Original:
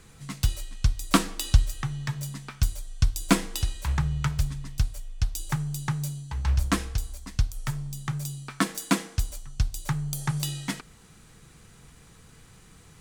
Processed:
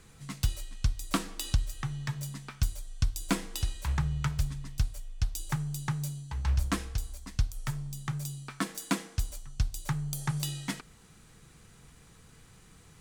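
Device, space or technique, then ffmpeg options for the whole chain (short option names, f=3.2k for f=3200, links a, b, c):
soft clipper into limiter: -af "asoftclip=type=tanh:threshold=-5dB,alimiter=limit=-12.5dB:level=0:latency=1:release=340,volume=-3.5dB"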